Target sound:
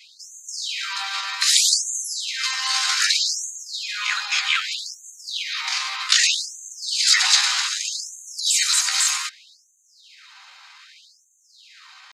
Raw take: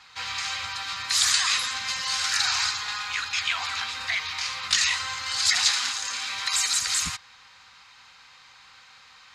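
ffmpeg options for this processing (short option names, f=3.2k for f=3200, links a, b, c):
-af "atempo=0.77,afftfilt=real='re*gte(b*sr/1024,530*pow(6200/530,0.5+0.5*sin(2*PI*0.64*pts/sr)))':imag='im*gte(b*sr/1024,530*pow(6200/530,0.5+0.5*sin(2*PI*0.64*pts/sr)))':win_size=1024:overlap=0.75,volume=5.5dB"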